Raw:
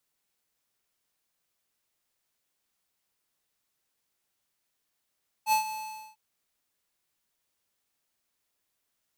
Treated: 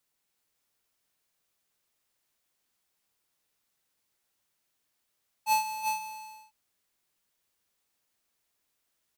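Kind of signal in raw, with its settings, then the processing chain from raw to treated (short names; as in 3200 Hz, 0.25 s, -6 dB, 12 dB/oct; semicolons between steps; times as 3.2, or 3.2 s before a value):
ADSR square 868 Hz, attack 61 ms, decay 0.111 s, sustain -13 dB, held 0.23 s, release 0.468 s -22 dBFS
echo 0.358 s -5 dB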